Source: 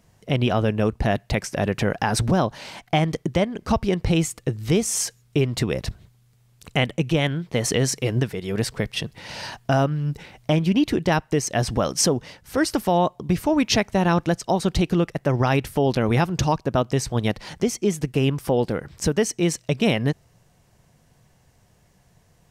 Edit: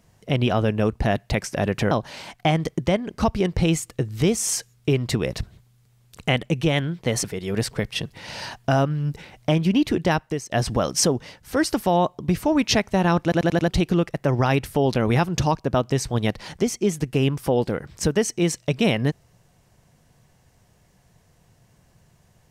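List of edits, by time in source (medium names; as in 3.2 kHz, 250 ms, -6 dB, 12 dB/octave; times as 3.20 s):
1.91–2.39 s: delete
7.72–8.25 s: delete
11.00–11.52 s: fade out equal-power, to -17 dB
14.24 s: stutter in place 0.09 s, 5 plays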